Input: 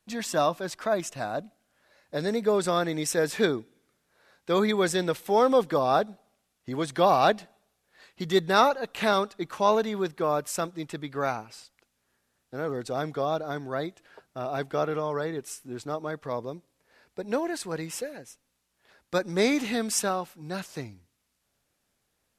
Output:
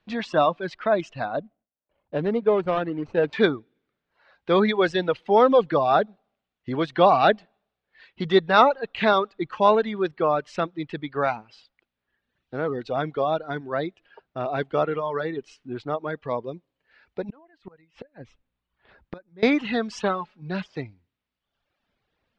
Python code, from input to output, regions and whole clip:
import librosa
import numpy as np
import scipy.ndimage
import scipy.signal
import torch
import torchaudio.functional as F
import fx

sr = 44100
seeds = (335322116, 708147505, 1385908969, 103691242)

y = fx.chain(x, sr, fx.median_filter(points=25),
    fx.gate_hold(open_db=-60.0, close_db=-64.0, hold_ms=71.0, range_db=-21, attack_ms=1.4, release_ms=100.0),
    fx.high_shelf(hz=3900.0, db=-9.0), at=(1.4, 3.33))
y = fx.chain(y, sr, fx.lowpass(hz=3500.0, slope=6),
    fx.low_shelf(hz=130.0, db=11.5),
    fx.gate_flip(shuts_db=-28.0, range_db=-25), at=(17.29, 19.43))
y = fx.chain(y, sr, fx.comb(ms=4.8, depth=0.64),
    fx.transformer_sat(knee_hz=770.0), at=(20.03, 20.68))
y = fx.dereverb_blind(y, sr, rt60_s=1.2)
y = scipy.signal.sosfilt(scipy.signal.butter(4, 3800.0, 'lowpass', fs=sr, output='sos'), y)
y = F.gain(torch.from_numpy(y), 5.0).numpy()